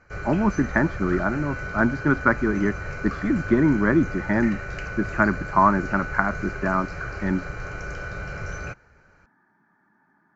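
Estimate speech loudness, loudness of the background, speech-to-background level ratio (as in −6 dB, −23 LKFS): −23.5 LKFS, −33.0 LKFS, 9.5 dB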